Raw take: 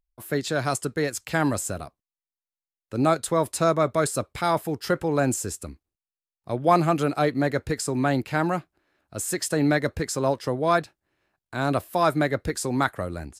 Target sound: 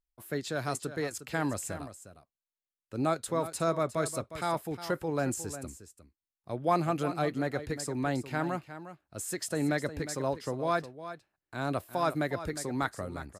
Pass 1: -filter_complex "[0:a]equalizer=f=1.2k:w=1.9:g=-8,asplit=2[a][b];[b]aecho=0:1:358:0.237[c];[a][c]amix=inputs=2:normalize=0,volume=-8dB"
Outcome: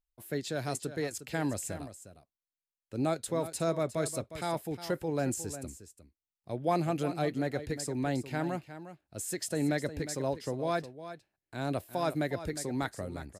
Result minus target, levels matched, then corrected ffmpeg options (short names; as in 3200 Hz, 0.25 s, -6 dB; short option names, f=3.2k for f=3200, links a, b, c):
1000 Hz band -2.5 dB
-filter_complex "[0:a]asplit=2[a][b];[b]aecho=0:1:358:0.237[c];[a][c]amix=inputs=2:normalize=0,volume=-8dB"